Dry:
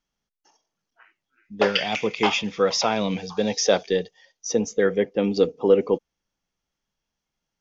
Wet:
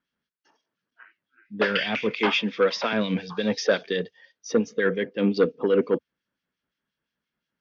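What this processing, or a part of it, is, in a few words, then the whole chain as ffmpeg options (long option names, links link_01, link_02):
guitar amplifier with harmonic tremolo: -filter_complex "[0:a]asettb=1/sr,asplit=3[link_01][link_02][link_03];[link_01]atrim=end=2.114[link_04];[link_02]atrim=start=2.11:end=2.93,asetpts=PTS-STARTPTS,afade=type=in:duration=0.004:curve=qsin,afade=type=out:start_time=0.816:duration=0.004:curve=qsin,highpass=frequency=200:width=0.5412,highpass=frequency=200:width=1.3066[link_05];[link_03]atrim=start=2.926[link_06];[link_04][link_05]acrossfade=duration=0.004:curve1=hsin:curve2=qsin[link_07];[link_07][link_06]acrossfade=duration=0.004:curve1=qsin:curve2=hsin,acrossover=split=1900[link_08][link_09];[link_08]aeval=exprs='val(0)*(1-0.7/2+0.7/2*cos(2*PI*5.7*n/s))':channel_layout=same[link_10];[link_09]aeval=exprs='val(0)*(1-0.7/2-0.7/2*cos(2*PI*5.7*n/s))':channel_layout=same[link_11];[link_10][link_11]amix=inputs=2:normalize=0,asoftclip=type=tanh:threshold=-15.5dB,highpass=86,equalizer=frequency=87:width_type=q:width=4:gain=-7,equalizer=frequency=250:width_type=q:width=4:gain=4,equalizer=frequency=780:width_type=q:width=4:gain=-9,equalizer=frequency=1600:width_type=q:width=4:gain=7,lowpass=frequency=4400:width=0.5412,lowpass=frequency=4400:width=1.3066,volume=3.5dB"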